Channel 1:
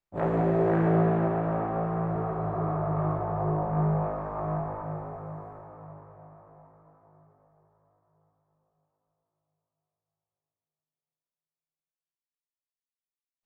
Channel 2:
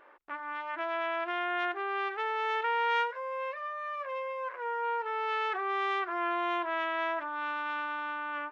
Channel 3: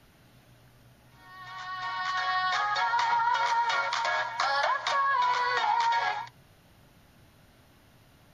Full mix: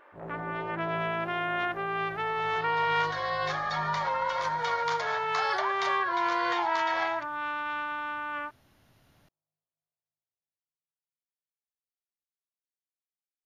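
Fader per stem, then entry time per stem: -14.5 dB, +1.5 dB, -5.0 dB; 0.00 s, 0.00 s, 0.95 s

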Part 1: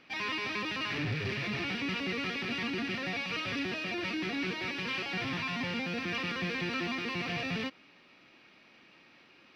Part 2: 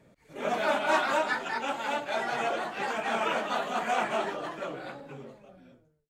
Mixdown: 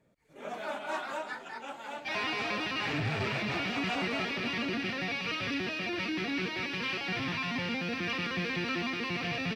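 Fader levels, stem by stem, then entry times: +1.0 dB, -10.0 dB; 1.95 s, 0.00 s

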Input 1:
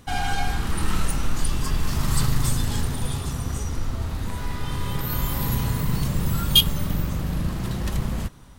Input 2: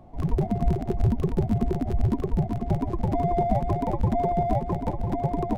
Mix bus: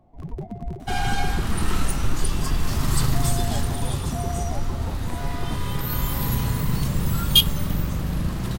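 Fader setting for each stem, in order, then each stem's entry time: +0.5 dB, -8.5 dB; 0.80 s, 0.00 s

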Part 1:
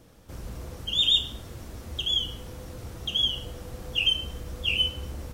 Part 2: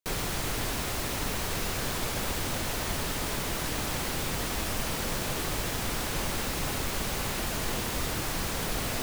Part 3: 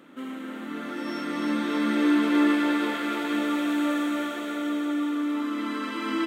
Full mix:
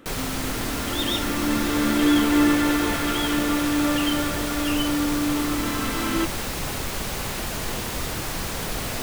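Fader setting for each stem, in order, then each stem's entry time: -7.5 dB, +2.5 dB, +2.5 dB; 0.00 s, 0.00 s, 0.00 s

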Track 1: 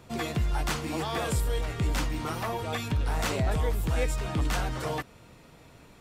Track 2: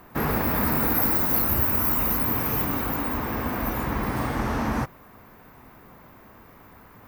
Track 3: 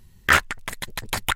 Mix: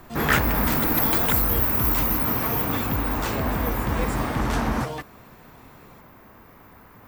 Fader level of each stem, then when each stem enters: -1.0 dB, +0.5 dB, -5.0 dB; 0.00 s, 0.00 s, 0.00 s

